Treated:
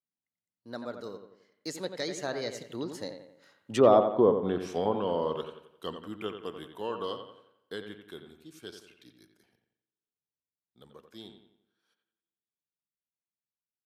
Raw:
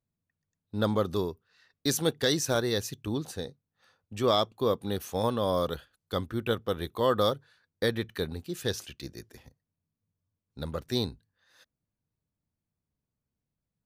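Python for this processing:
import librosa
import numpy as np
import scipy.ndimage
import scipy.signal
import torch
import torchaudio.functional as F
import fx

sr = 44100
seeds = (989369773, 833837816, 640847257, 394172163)

y = fx.doppler_pass(x, sr, speed_mps=37, closest_m=15.0, pass_at_s=3.98)
y = scipy.signal.sosfilt(scipy.signal.butter(2, 190.0, 'highpass', fs=sr, output='sos'), y)
y = fx.rev_double_slope(y, sr, seeds[0], early_s=0.73, late_s=2.6, knee_db=-20, drr_db=19.0)
y = fx.env_lowpass_down(y, sr, base_hz=860.0, full_db=-28.5)
y = fx.echo_bbd(y, sr, ms=88, stages=2048, feedback_pct=44, wet_db=-8.0)
y = F.gain(torch.from_numpy(y), 7.0).numpy()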